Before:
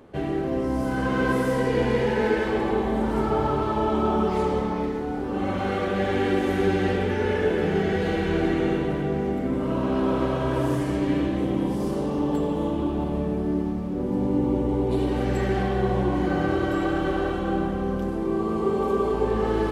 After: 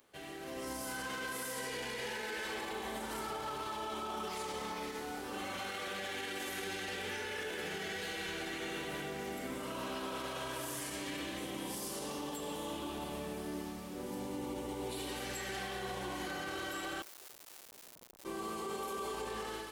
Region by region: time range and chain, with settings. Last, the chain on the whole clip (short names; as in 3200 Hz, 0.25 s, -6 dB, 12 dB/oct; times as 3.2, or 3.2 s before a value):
17.02–18.25 BPF 450–4000 Hz + Schmitt trigger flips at -32.5 dBFS + core saturation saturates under 520 Hz
whole clip: pre-emphasis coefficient 0.97; limiter -41 dBFS; AGC gain up to 7 dB; gain +2.5 dB